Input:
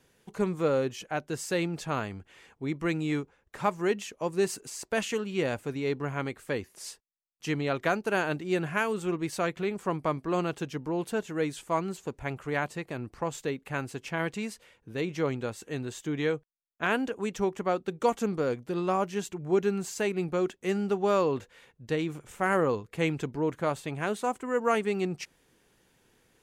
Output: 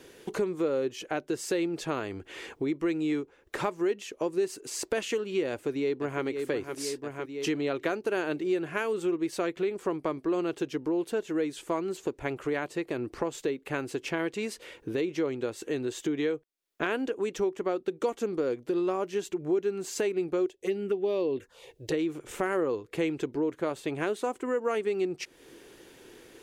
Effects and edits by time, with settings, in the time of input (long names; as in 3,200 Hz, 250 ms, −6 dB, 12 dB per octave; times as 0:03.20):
0:05.50–0:06.23: delay throw 510 ms, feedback 55%, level −10 dB
0:20.46–0:21.94: phaser swept by the level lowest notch 180 Hz, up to 1,400 Hz, full sweep at −23.5 dBFS
whole clip: drawn EQ curve 200 Hz 0 dB, 340 Hz +14 dB, 790 Hz +4 dB, 3,600 Hz +7 dB, 7,700 Hz +4 dB; downward compressor 3 to 1, threshold −39 dBFS; level +6.5 dB